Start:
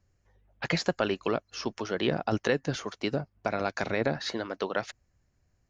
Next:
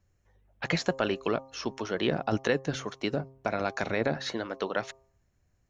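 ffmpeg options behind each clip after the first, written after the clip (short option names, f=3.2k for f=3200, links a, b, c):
-af "bandreject=f=4.8k:w=9.7,bandreject=f=133.3:t=h:w=4,bandreject=f=266.6:t=h:w=4,bandreject=f=399.9:t=h:w=4,bandreject=f=533.2:t=h:w=4,bandreject=f=666.5:t=h:w=4,bandreject=f=799.8:t=h:w=4,bandreject=f=933.1:t=h:w=4,bandreject=f=1.0664k:t=h:w=4,bandreject=f=1.1997k:t=h:w=4"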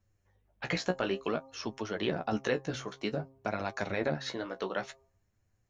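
-af "flanger=delay=9:depth=7.4:regen=28:speed=0.55:shape=sinusoidal"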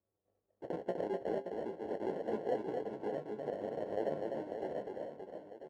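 -af "acrusher=samples=36:mix=1:aa=0.000001,bandpass=f=480:t=q:w=1.6:csg=0,aecho=1:1:250|575|997.5|1547|2261:0.631|0.398|0.251|0.158|0.1,volume=-2dB"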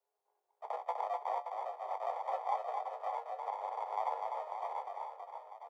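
-af "afreqshift=320"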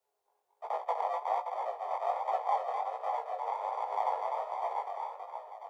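-af "flanger=delay=15.5:depth=7.8:speed=1.3,volume=7.5dB"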